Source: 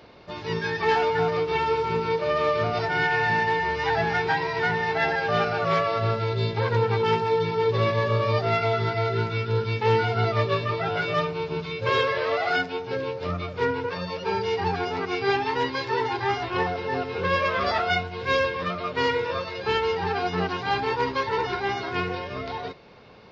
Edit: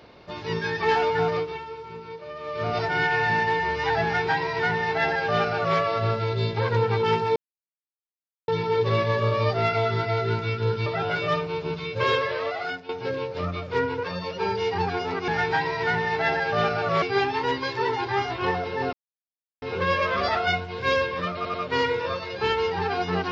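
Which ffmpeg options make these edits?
-filter_complex "[0:a]asplit=11[a][b][c][d][e][f][g][h][i][j][k];[a]atrim=end=1.68,asetpts=PTS-STARTPTS,afade=t=out:st=1.36:d=0.32:c=qua:silence=0.211349[l];[b]atrim=start=1.68:end=2.38,asetpts=PTS-STARTPTS,volume=-13.5dB[m];[c]atrim=start=2.38:end=7.36,asetpts=PTS-STARTPTS,afade=t=in:d=0.32:c=qua:silence=0.211349,afade=t=out:st=4.976:d=0.004:c=hsin,apad=pad_dur=1.12[n];[d]atrim=start=7.36:end=9.742,asetpts=PTS-STARTPTS,afade=t=in:d=0.004:c=hsin[o];[e]atrim=start=10.718:end=12.75,asetpts=PTS-STARTPTS,afade=t=out:st=1.262:d=0.77:silence=0.251189[p];[f]atrim=start=12.75:end=15.142,asetpts=PTS-STARTPTS,afade=t=in:d=0.004:c=hsin:silence=0.251189[q];[g]atrim=start=4.038:end=5.782[r];[h]atrim=start=15.138:end=17.05,asetpts=PTS-STARTPTS,afade=t=out:st=1.908:d=0.004:c=hsin,apad=pad_dur=0.69[s];[i]atrim=start=17.05:end=18.882,asetpts=PTS-STARTPTS,afade=t=in:d=0.004:c=hsin[t];[j]atrim=start=18.788:end=18.882[u];[k]atrim=start=18.788[v];[l][m][n][o]concat=n=4:v=0:a=1[w];[p][q]concat=n=2:v=0:a=1[x];[w][x]acrossfade=d=0.004:c1=hsin:c2=hsin[y];[y][r]acrossfade=d=0.004:c1=hsin:c2=hsin[z];[s][t]concat=n=2:v=0:a=1[aa];[z][aa]acrossfade=d=0.004:c1=hsin:c2=hsin[ab];[ab][u]acrossfade=d=0.004:c1=hsin:c2=hsin[ac];[ac][v]acrossfade=d=0.004:c1=hsin:c2=hsin"

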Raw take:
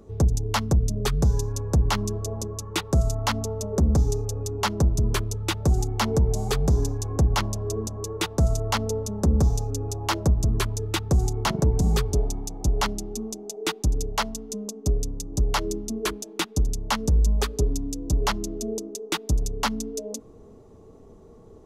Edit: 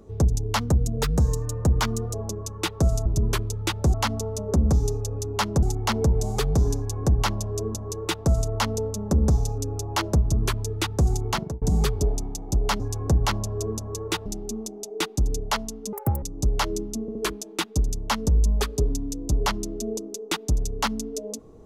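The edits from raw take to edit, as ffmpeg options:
-filter_complex "[0:a]asplit=13[a][b][c][d][e][f][g][h][i][j][k][l][m];[a]atrim=end=0.604[n];[b]atrim=start=0.6:end=2.26,asetpts=PTS-STARTPTS,asetrate=47628,aresample=44100,atrim=end_sample=67783,asetpts=PTS-STARTPTS[o];[c]atrim=start=2.256:end=3.182[p];[d]atrim=start=4.868:end=5.752[q];[e]atrim=start=3.178:end=4.872[r];[f]atrim=start=5.748:end=11.74,asetpts=PTS-STARTPTS,afade=t=out:st=5.672:d=0.32[s];[g]atrim=start=11.74:end=12.922,asetpts=PTS-STARTPTS,afade=t=in:d=0.004:c=hsin[t];[h]atrim=start=6.888:end=8.352[u];[i]atrim=start=12.918:end=14.594[v];[j]atrim=start=14.59:end=15.17,asetpts=PTS-STARTPTS,asetrate=86436,aresample=44100[w];[k]atrim=start=15.166:end=16.032[x];[l]atrim=start=15.958:end=16.032[y];[m]atrim=start=15.958[z];[n][o]acrossfade=d=0.004:c1=hsin:c2=hsin[aa];[aa][p]acrossfade=d=0.004:c1=hsin:c2=hsin[ab];[ab][q]acrossfade=d=0.004:c1=hsin:c2=hsin[ac];[ac][r]acrossfade=d=0.004:c1=hsin:c2=hsin[ad];[s][t]concat=n=2:v=0:a=1[ae];[ad][ae]acrossfade=d=0.004:c1=hsin:c2=hsin[af];[af][u]acrossfade=d=0.004:c1=hsin:c2=hsin[ag];[ag][v]acrossfade=d=0.004:c1=hsin:c2=hsin[ah];[ah][w]acrossfade=d=0.004:c1=hsin:c2=hsin[ai];[ai][x]acrossfade=d=0.004:c1=hsin:c2=hsin[aj];[aj][y]acrossfade=d=0.004:c1=hsin:c2=hsin[ak];[ak][z]acrossfade=d=0.004:c1=hsin:c2=hsin"

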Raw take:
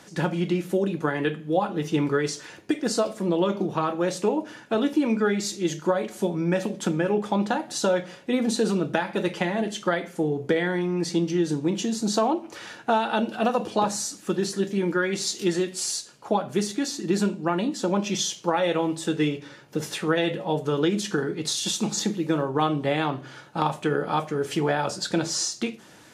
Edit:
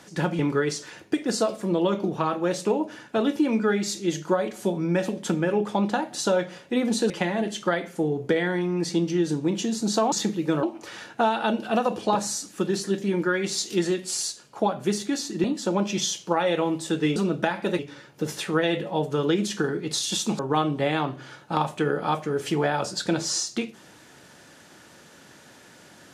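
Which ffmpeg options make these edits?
-filter_complex "[0:a]asplit=9[a][b][c][d][e][f][g][h][i];[a]atrim=end=0.392[j];[b]atrim=start=1.958:end=8.672[k];[c]atrim=start=9.298:end=12.322[l];[d]atrim=start=21.928:end=22.442[m];[e]atrim=start=12.318:end=17.132[n];[f]atrim=start=17.608:end=19.332[o];[g]atrim=start=8.668:end=9.302[p];[h]atrim=start=19.328:end=21.932[q];[i]atrim=start=22.438[r];[j][k]acrossfade=d=0.004:c1=hsin:c2=hsin[s];[s][l]acrossfade=d=0.004:c1=hsin:c2=hsin[t];[t][m]acrossfade=d=0.004:c1=hsin:c2=hsin[u];[u][n]acrossfade=d=0.004:c1=hsin:c2=hsin[v];[v][o]acrossfade=d=0.004:c1=hsin:c2=hsin[w];[w][p]acrossfade=d=0.004:c1=hsin:c2=hsin[x];[x][q]acrossfade=d=0.004:c1=hsin:c2=hsin[y];[y][r]acrossfade=d=0.004:c1=hsin:c2=hsin"

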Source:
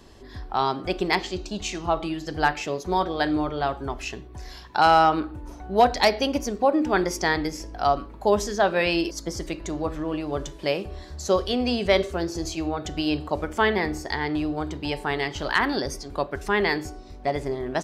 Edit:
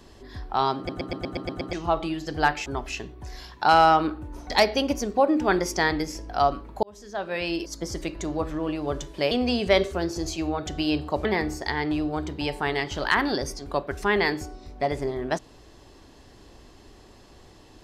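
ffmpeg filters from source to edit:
-filter_complex "[0:a]asplit=14[a][b][c][d][e][f][g][h][i][j][k][l][m][n];[a]atrim=end=0.892[o];[b]atrim=start=0.768:end=0.892[p];[c]atrim=start=0.768:end=0.892[q];[d]atrim=start=0.768:end=0.892[r];[e]atrim=start=0.768:end=0.892[s];[f]atrim=start=0.768:end=0.892[t];[g]atrim=start=0.768:end=0.892[u];[h]atrim=start=0.768:end=0.892[v];[i]atrim=start=1.728:end=2.662[w];[j]atrim=start=3.788:end=5.632[x];[k]atrim=start=5.948:end=8.28,asetpts=PTS-STARTPTS,afade=t=out:st=2.328:d=0.004:c=hsin[y];[l]atrim=start=8.28:end=10.762,asetpts=PTS-STARTPTS,afade=t=in:d=1.17[z];[m]atrim=start=11.498:end=13.442[aa];[n]atrim=start=13.688[ab];[o][p]acrossfade=d=0.004:c1=hsin:c2=hsin[ac];[ac][q]acrossfade=d=0.004:c1=hsin:c2=hsin[ad];[ad][r]acrossfade=d=0.004:c1=hsin:c2=hsin[ae];[ae][s]acrossfade=d=0.004:c1=hsin:c2=hsin[af];[af][t]acrossfade=d=0.004:c1=hsin:c2=hsin[ag];[ag][u]acrossfade=d=0.004:c1=hsin:c2=hsin[ah];[ah][v]acrossfade=d=0.004:c1=hsin:c2=hsin[ai];[ai][w]acrossfade=d=0.004:c1=hsin:c2=hsin[aj];[aj][x]acrossfade=d=0.004:c1=hsin:c2=hsin[ak];[y][z]concat=n=2:v=0:a=1[al];[ak][al]acrossfade=d=0.004:c1=hsin:c2=hsin[am];[am][aa]acrossfade=d=0.004:c1=hsin:c2=hsin[an];[an][ab]acrossfade=d=0.004:c1=hsin:c2=hsin"

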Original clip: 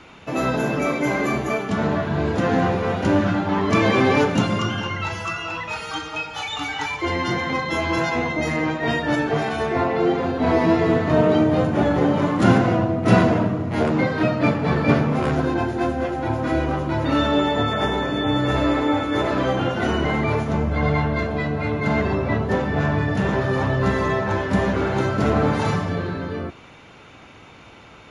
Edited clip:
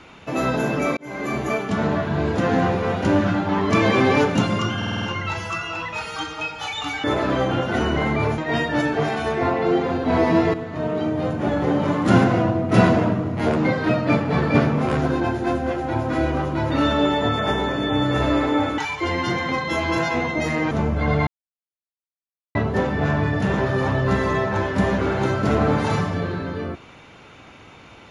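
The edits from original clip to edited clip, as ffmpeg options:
-filter_complex "[0:a]asplit=14[a][b][c][d][e][f][g][h][i][j][k][l][m][n];[a]atrim=end=0.97,asetpts=PTS-STARTPTS,afade=t=out:st=0.966:d=0.004:c=hsin[o];[b]atrim=start=0.97:end=4.822,asetpts=PTS-STARTPTS,afade=t=in:d=0.48[p];[c]atrim=start=4.768:end=4.822[q];[d]atrim=start=4.768:end=4.822[r];[e]atrim=start=4.768:end=4.822[s];[f]atrim=start=4.768:end=4.822[t];[g]atrim=start=4.768:end=6.792[u];[h]atrim=start=19.118:end=20.462[v];[i]atrim=start=8.718:end=10.88,asetpts=PTS-STARTPTS,afade=t=out:st=2.158:d=0.004:c=hsin:silence=0.237137[w];[j]atrim=start=10.88:end=19.122,asetpts=PTS-STARTPTS,afade=t=in:d=1.56:silence=0.237137[x];[k]atrim=start=6.788:end=8.722[y];[l]atrim=start=20.458:end=21.02,asetpts=PTS-STARTPTS,afade=t=out:st=0.558:d=0.004:c=hsin[z];[m]atrim=start=21.02:end=22.3,asetpts=PTS-STARTPTS,volume=0[aa];[n]atrim=start=22.3,asetpts=PTS-STARTPTS,afade=t=in:d=0.004:c=hsin[ab];[o][p]concat=n=2:v=0:a=1[ac];[ac][q]acrossfade=d=0.004:c1=hsin:c2=hsin[ad];[ad][r]acrossfade=d=0.004:c1=hsin:c2=hsin[ae];[ae][s]acrossfade=d=0.004:c1=hsin:c2=hsin[af];[af][t]acrossfade=d=0.004:c1=hsin:c2=hsin[ag];[ag][u]acrossfade=d=0.004:c1=hsin:c2=hsin[ah];[ah][v]acrossfade=d=0.004:c1=hsin:c2=hsin[ai];[w][x]concat=n=2:v=0:a=1[aj];[ai][aj]acrossfade=d=0.004:c1=hsin:c2=hsin[ak];[ak][y]acrossfade=d=0.004:c1=hsin:c2=hsin[al];[z][aa][ab]concat=n=3:v=0:a=1[am];[al][am]acrossfade=d=0.004:c1=hsin:c2=hsin"

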